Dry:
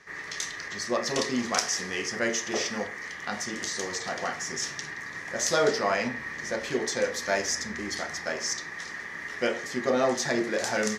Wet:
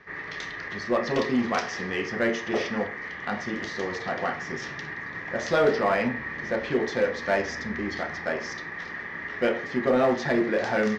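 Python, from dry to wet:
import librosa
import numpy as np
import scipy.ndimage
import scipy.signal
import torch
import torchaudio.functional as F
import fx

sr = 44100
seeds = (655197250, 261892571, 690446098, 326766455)

p1 = scipy.signal.sosfilt(scipy.signal.bessel(4, 2700.0, 'lowpass', norm='mag', fs=sr, output='sos'), x)
p2 = fx.low_shelf(p1, sr, hz=430.0, db=3.0)
p3 = np.clip(p2, -10.0 ** (-23.0 / 20.0), 10.0 ** (-23.0 / 20.0))
p4 = p2 + F.gain(torch.from_numpy(p3), -3.0).numpy()
y = F.gain(torch.from_numpy(p4), -1.5).numpy()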